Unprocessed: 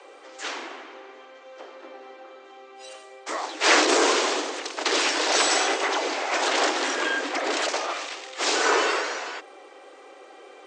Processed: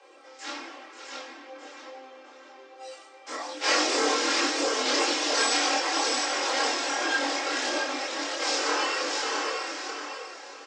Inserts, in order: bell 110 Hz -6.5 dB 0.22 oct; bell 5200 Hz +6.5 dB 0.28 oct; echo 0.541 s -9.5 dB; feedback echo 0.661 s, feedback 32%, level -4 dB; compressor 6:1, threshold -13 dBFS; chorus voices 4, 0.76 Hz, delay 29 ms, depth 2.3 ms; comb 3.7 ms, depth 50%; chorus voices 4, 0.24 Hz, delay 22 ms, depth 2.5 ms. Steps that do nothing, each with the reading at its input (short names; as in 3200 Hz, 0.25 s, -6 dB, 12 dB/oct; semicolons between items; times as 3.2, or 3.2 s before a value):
bell 110 Hz: input band starts at 230 Hz